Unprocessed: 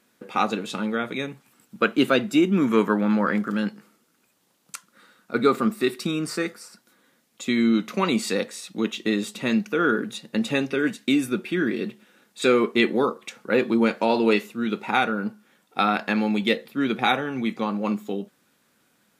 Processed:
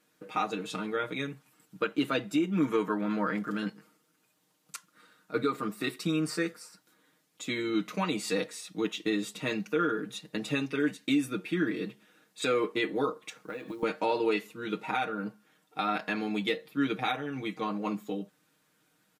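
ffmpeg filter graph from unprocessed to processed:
-filter_complex "[0:a]asettb=1/sr,asplit=3[s0][s1][s2];[s0]atrim=end=13.364[s3];[s1]atrim=start=13.36:end=13.83,asetpts=PTS-STARTPTS,afade=t=in:d=0.004:c=qsin,afade=t=out:st=0.466:d=0.004:c=qsin,highpass=f=42:p=1,acompressor=threshold=0.0398:ratio=16:attack=3.2:release=140:knee=1:detection=peak,acrusher=bits=8:mode=log:mix=0:aa=0.000001[s4];[s2]atrim=start=13.826[s5];[s3][s4]acrossfade=d=0.004:c1=hsin:c2=qsin[s6];[s6][s5]acrossfade=d=0.004:c1=qsin:c2=hsin,aecho=1:1:6.5:0.9,alimiter=limit=0.316:level=0:latency=1:release=304,volume=0.422"

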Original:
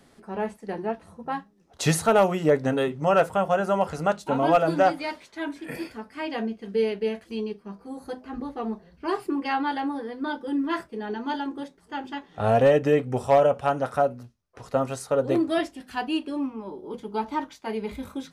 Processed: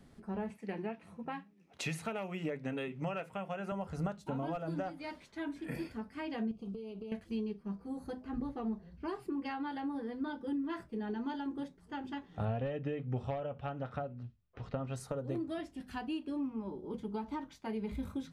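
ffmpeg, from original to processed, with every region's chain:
-filter_complex "[0:a]asettb=1/sr,asplit=3[s0][s1][s2];[s0]atrim=end=0.504[s3];[s1]atrim=start=0.5:end=3.72,asetpts=PTS-STARTPTS,afade=t=in:d=0.004:c=qsin,afade=t=out:st=3.216:d=0.004:c=qsin,highpass=180,equalizer=f=2400:w=2.2:g=13.5[s4];[s2]atrim=start=3.716[s5];[s3][s4]acrossfade=d=0.004:c1=hsin:c2=qsin[s6];[s6][s5]acrossfade=d=0.004:c1=qsin:c2=hsin,asettb=1/sr,asplit=3[s7][s8][s9];[s7]atrim=end=6.514[s10];[s8]atrim=start=6.51:end=7.12,asetpts=PTS-STARTPTS,afade=t=in:d=0.004:c=qsin,afade=t=out:st=0.606:d=0.004:c=qsin,acompressor=threshold=0.0158:ratio=10:attack=3.2:release=140:knee=1:detection=peak,asuperstop=centerf=1800:order=8:qfactor=1.8[s11];[s9]atrim=start=7.116[s12];[s10][s11]acrossfade=d=0.004:c1=hsin:c2=qsin[s13];[s13][s12]acrossfade=d=0.004:c1=qsin:c2=hsin,asettb=1/sr,asplit=3[s14][s15][s16];[s14]atrim=end=12.454[s17];[s15]atrim=start=12.45:end=14.96,asetpts=PTS-STARTPTS,afade=t=in:d=0.004:c=qsin,afade=t=out:st=2.506:d=0.004:c=qsin,lowpass=f=3300:t=q:w=1.5,bandreject=f=990:w=21[s18];[s16]atrim=start=14.956[s19];[s17][s18]acrossfade=d=0.004:c1=hsin:c2=qsin[s20];[s20][s19]acrossfade=d=0.004:c1=qsin:c2=hsin,acompressor=threshold=0.0316:ratio=5,bass=f=250:g=12,treble=f=4000:g=-2,bandreject=f=50:t=h:w=6,bandreject=f=100:t=h:w=6,bandreject=f=150:t=h:w=6,volume=0.398"

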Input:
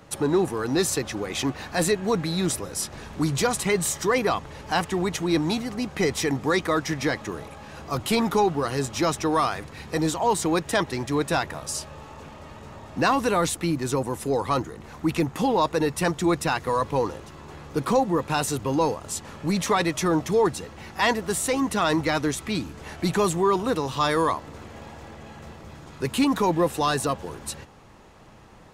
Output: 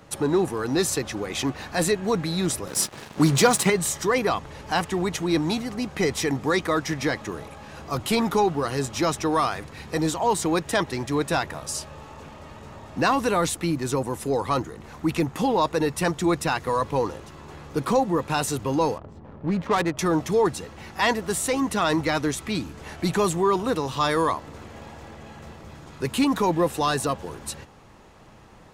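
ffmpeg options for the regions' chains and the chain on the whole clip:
-filter_complex "[0:a]asettb=1/sr,asplit=3[s0][s1][s2];[s0]atrim=end=2.674[s3];[s1]atrim=start=2.67:end=3.7,asetpts=PTS-STARTPTS,afade=t=in:d=0.004:c=qsin,afade=t=out:st=1.026:d=0.004:c=qsin,highpass=f=110:w=0.5412,highpass=f=110:w=1.3066,acontrast=75,aeval=exprs='sgn(val(0))*max(abs(val(0))-0.0178,0)':c=same[s4];[s2]atrim=start=3.696[s5];[s3][s4]acrossfade=d=0.004:c1=hsin:c2=qsin[s6];[s6][s5]acrossfade=d=0.004:c1=qsin:c2=hsin,asettb=1/sr,asplit=3[s7][s8][s9];[s7]atrim=end=18.984[s10];[s8]atrim=start=18.98:end=19.99,asetpts=PTS-STARTPTS,afade=t=in:d=0.004:c=qsin,afade=t=out:st=1.006:d=0.004:c=qsin,lowpass=8500,adynamicsmooth=sensitivity=2:basefreq=530[s11];[s9]atrim=start=19.986[s12];[s10][s11]acrossfade=d=0.004:c1=hsin:c2=qsin[s13];[s13][s12]acrossfade=d=0.004:c1=qsin:c2=hsin"

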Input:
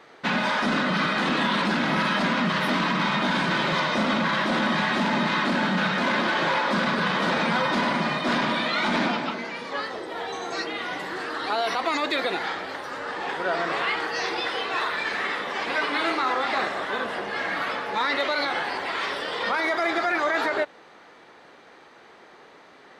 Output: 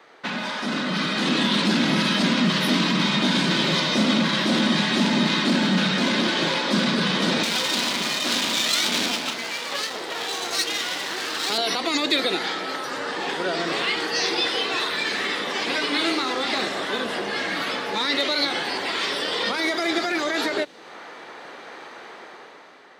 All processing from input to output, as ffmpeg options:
-filter_complex "[0:a]asettb=1/sr,asplit=3[s0][s1][s2];[s0]atrim=end=7.434[s3];[s1]atrim=start=7.43:end=11.58,asetpts=PTS-STARTPTS,afade=t=in:d=0.004:c=qsin,afade=t=out:st=4.146:d=0.004:c=qsin,equalizer=f=3600:t=o:w=1.5:g=6,aeval=exprs='max(val(0),0)':c=same,highpass=f=300:p=1[s4];[s2]atrim=start=11.576[s5];[s3][s4]acrossfade=d=0.004:c1=hsin:c2=qsin[s6];[s6][s5]acrossfade=d=0.004:c1=qsin:c2=hsin,asettb=1/sr,asplit=3[s7][s8][s9];[s7]atrim=end=12.194[s10];[s8]atrim=start=12.19:end=12.85,asetpts=PTS-STARTPTS,afade=t=in:d=0.004:c=qsin,afade=t=out:st=0.656:d=0.004:c=qsin,highpass=130,aeval=exprs='val(0)+0.02*sin(2*PI*1300*n/s)':c=same[s11];[s9]atrim=start=12.846[s12];[s10][s11]acrossfade=d=0.004:c1=hsin:c2=qsin[s13];[s13][s12]acrossfade=d=0.004:c1=qsin:c2=hsin,dynaudnorm=f=300:g=7:m=3.98,highpass=f=280:p=1,acrossover=split=390|3000[s14][s15][s16];[s15]acompressor=threshold=0.0316:ratio=6[s17];[s14][s17][s16]amix=inputs=3:normalize=0"

